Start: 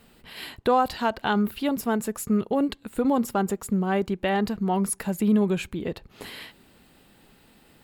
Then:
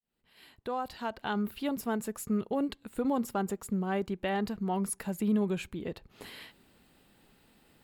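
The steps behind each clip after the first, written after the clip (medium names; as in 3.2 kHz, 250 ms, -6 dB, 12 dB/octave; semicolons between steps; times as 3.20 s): fade-in on the opening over 1.62 s; trim -7 dB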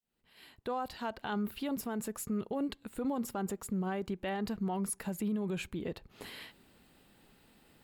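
peak limiter -27 dBFS, peak gain reduction 8 dB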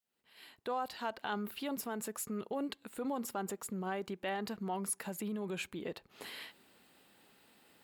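high-pass 410 Hz 6 dB/octave; trim +1 dB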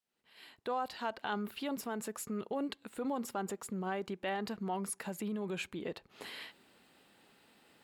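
treble shelf 12 kHz -11.5 dB; trim +1 dB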